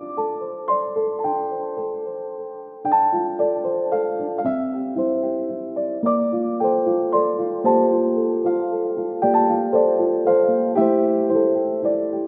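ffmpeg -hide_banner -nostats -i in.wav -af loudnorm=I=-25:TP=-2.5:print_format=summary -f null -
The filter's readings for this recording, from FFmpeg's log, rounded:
Input Integrated:    -20.5 LUFS
Input True Peak:      -5.7 dBTP
Input LRA:             4.2 LU
Input Threshold:     -30.6 LUFS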